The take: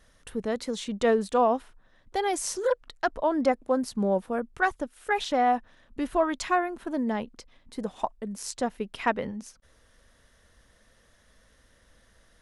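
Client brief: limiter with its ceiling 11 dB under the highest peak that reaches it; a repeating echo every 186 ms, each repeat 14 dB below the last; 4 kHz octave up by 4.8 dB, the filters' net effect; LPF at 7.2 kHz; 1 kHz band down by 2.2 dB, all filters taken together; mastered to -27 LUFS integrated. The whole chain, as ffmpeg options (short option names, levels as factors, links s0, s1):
-af "lowpass=7200,equalizer=f=1000:t=o:g=-3.5,equalizer=f=4000:t=o:g=6.5,alimiter=limit=0.075:level=0:latency=1,aecho=1:1:186|372:0.2|0.0399,volume=2.11"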